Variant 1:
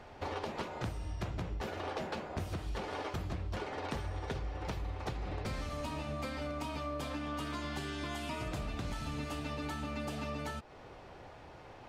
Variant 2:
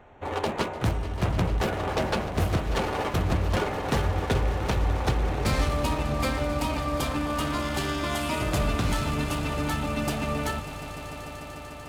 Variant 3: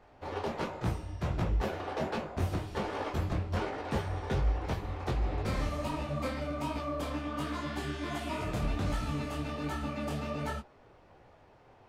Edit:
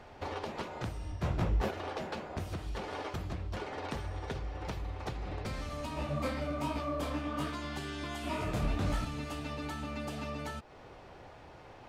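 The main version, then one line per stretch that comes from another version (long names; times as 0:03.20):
1
0:01.12–0:01.71: punch in from 3
0:05.97–0:07.50: punch in from 3
0:08.24–0:09.05: punch in from 3
not used: 2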